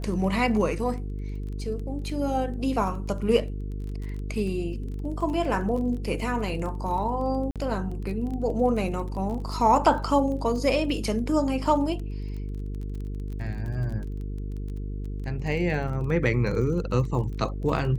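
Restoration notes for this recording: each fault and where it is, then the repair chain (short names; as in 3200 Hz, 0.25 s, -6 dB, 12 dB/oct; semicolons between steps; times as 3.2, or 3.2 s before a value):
buzz 50 Hz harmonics 9 -32 dBFS
crackle 22/s -34 dBFS
7.51–7.56 gap 47 ms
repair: de-click; de-hum 50 Hz, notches 9; interpolate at 7.51, 47 ms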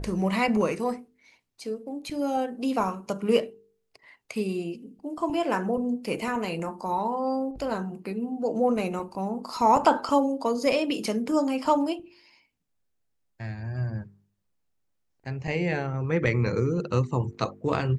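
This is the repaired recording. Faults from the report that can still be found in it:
none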